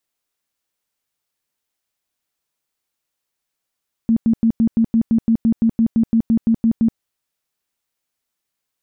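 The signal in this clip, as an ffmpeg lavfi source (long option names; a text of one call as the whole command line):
ffmpeg -f lavfi -i "aevalsrc='0.282*sin(2*PI*227*mod(t,0.17))*lt(mod(t,0.17),17/227)':duration=2.89:sample_rate=44100" out.wav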